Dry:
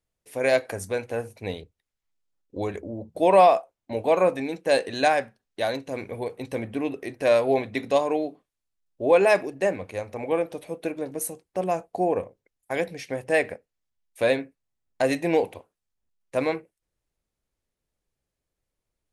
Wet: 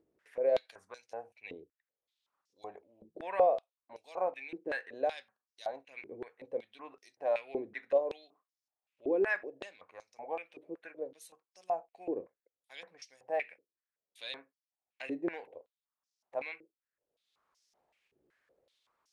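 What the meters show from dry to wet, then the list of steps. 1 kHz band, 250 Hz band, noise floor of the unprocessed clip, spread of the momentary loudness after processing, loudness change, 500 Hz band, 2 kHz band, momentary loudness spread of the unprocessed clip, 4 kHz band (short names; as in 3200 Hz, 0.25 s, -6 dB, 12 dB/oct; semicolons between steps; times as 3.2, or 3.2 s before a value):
-13.5 dB, -14.5 dB, -85 dBFS, 22 LU, -11.0 dB, -12.0 dB, -11.0 dB, 14 LU, -13.5 dB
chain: upward compressor, threshold -36 dBFS; stepped band-pass 5.3 Hz 350–5400 Hz; gain -3.5 dB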